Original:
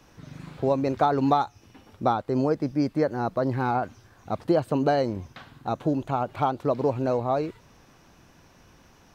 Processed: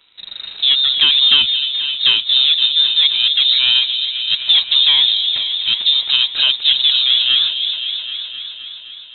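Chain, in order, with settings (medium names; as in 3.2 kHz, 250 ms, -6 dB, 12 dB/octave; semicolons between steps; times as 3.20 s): waveshaping leveller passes 2; delay with an opening low-pass 260 ms, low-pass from 750 Hz, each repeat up 1 oct, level -6 dB; frequency inversion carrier 3.9 kHz; trim +3.5 dB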